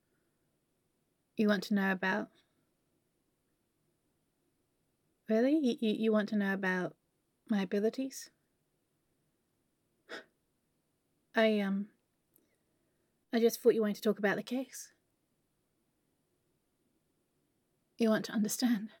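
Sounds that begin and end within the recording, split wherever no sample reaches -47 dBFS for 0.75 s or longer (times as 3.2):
1.38–2.25
5.29–8.26
10.1–10.21
11.34–12.36
13.33–14.85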